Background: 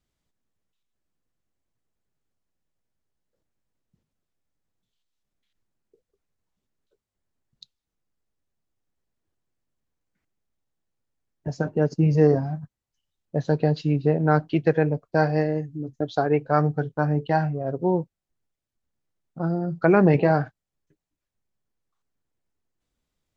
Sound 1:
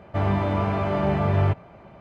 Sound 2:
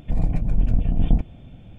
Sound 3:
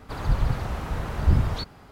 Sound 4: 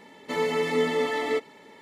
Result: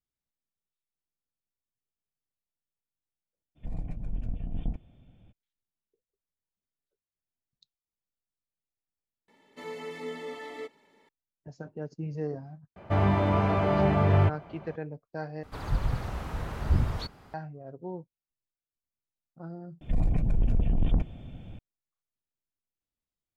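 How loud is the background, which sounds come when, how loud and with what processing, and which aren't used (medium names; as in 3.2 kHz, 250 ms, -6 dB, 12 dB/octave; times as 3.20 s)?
background -16 dB
3.55 s: add 2 -14 dB, fades 0.02 s + resampled via 32 kHz
9.28 s: add 4 -13.5 dB
12.76 s: add 1 -1 dB
15.43 s: replace with 3 -5 dB
19.81 s: replace with 2 -0.5 dB + saturation -17.5 dBFS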